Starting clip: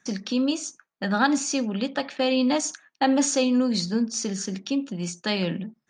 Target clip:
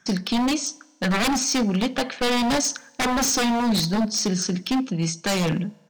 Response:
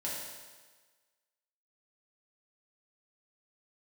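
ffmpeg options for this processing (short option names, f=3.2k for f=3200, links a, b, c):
-filter_complex "[0:a]asetrate=41625,aresample=44100,atempo=1.05946,aeval=exprs='0.0794*(abs(mod(val(0)/0.0794+3,4)-2)-1)':c=same,asplit=2[a][b];[1:a]atrim=start_sample=2205[c];[b][c]afir=irnorm=-1:irlink=0,volume=-24.5dB[d];[a][d]amix=inputs=2:normalize=0,volume=5.5dB"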